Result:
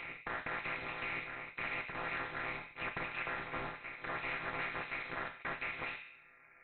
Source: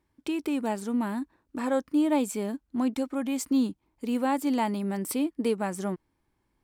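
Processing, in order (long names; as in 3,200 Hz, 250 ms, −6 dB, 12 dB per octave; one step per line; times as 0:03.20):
channel vocoder with a chord as carrier minor triad, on A#2
Butterworth high-pass 1,600 Hz 72 dB per octave
in parallel at 0 dB: speech leveller 0.5 s
on the sum: leveller curve on the samples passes 1
brickwall limiter −42.5 dBFS, peak gain reduction 11.5 dB
flanger 1.7 Hz, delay 5.4 ms, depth 5.3 ms, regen −58%
backwards echo 1,072 ms −11 dB
feedback delay network reverb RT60 0.56 s, low-frequency decay 1.25×, high-frequency decay 0.45×, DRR 3 dB
voice inversion scrambler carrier 4,000 Hz
every bin compressed towards the loudest bin 2 to 1
level +16 dB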